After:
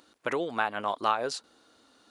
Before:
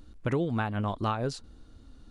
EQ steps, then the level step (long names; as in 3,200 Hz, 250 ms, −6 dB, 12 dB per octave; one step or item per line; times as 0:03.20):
high-pass filter 550 Hz 12 dB per octave
+5.5 dB